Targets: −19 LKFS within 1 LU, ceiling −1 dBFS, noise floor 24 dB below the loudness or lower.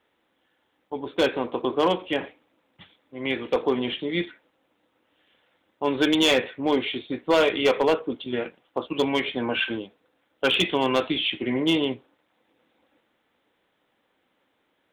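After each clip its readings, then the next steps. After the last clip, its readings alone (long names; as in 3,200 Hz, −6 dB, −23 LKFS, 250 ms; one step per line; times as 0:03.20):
share of clipped samples 0.4%; peaks flattened at −13.5 dBFS; integrated loudness −24.5 LKFS; sample peak −13.5 dBFS; target loudness −19.0 LKFS
→ clipped peaks rebuilt −13.5 dBFS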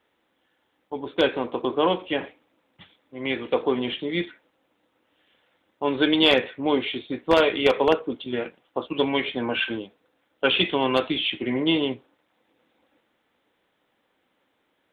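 share of clipped samples 0.0%; integrated loudness −24.0 LKFS; sample peak −4.5 dBFS; target loudness −19.0 LKFS
→ level +5 dB
brickwall limiter −1 dBFS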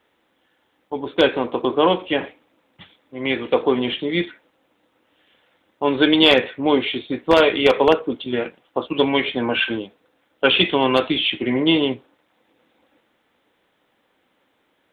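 integrated loudness −19.0 LKFS; sample peak −1.0 dBFS; background noise floor −67 dBFS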